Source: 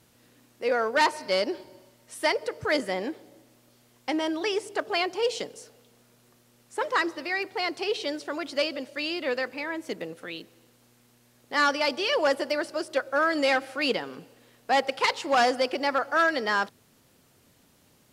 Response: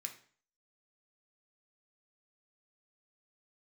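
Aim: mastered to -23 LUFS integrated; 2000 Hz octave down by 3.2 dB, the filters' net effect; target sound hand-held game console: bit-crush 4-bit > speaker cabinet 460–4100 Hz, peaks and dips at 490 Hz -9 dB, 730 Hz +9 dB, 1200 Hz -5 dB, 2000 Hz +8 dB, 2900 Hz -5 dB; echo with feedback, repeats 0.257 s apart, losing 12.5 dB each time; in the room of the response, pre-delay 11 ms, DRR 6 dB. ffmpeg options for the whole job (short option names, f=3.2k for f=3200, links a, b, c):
-filter_complex "[0:a]equalizer=f=2k:t=o:g=-7.5,aecho=1:1:257|514|771:0.237|0.0569|0.0137,asplit=2[a][b];[1:a]atrim=start_sample=2205,adelay=11[c];[b][c]afir=irnorm=-1:irlink=0,volume=-3dB[d];[a][d]amix=inputs=2:normalize=0,acrusher=bits=3:mix=0:aa=0.000001,highpass=460,equalizer=f=490:t=q:w=4:g=-9,equalizer=f=730:t=q:w=4:g=9,equalizer=f=1.2k:t=q:w=4:g=-5,equalizer=f=2k:t=q:w=4:g=8,equalizer=f=2.9k:t=q:w=4:g=-5,lowpass=f=4.1k:w=0.5412,lowpass=f=4.1k:w=1.3066,volume=4dB"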